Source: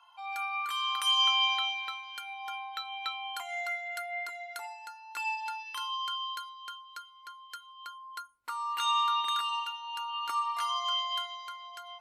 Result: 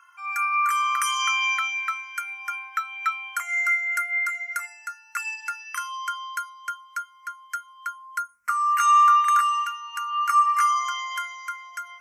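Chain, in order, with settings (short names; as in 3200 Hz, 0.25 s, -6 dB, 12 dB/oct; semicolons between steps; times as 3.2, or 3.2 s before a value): EQ curve 160 Hz 0 dB, 220 Hz +10 dB, 330 Hz -24 dB, 480 Hz -1 dB, 870 Hz -15 dB, 1200 Hz +15 dB, 2200 Hz +13 dB, 3700 Hz -14 dB, 5800 Hz +13 dB, 12000 Hz +10 dB; ending taper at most 460 dB/s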